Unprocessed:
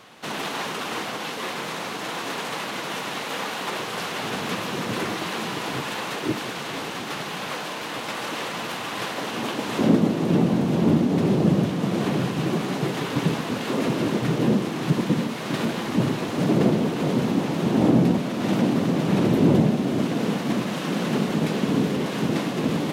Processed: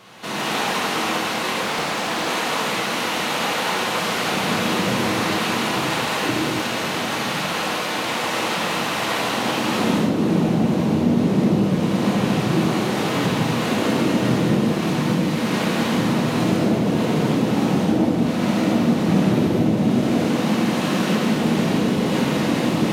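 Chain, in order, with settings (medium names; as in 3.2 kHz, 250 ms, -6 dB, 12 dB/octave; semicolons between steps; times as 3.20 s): compression, threshold -22 dBFS, peak gain reduction 9.5 dB; gated-style reverb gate 310 ms flat, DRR -6.5 dB; 1.63–2.28 s: loudspeaker Doppler distortion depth 0.5 ms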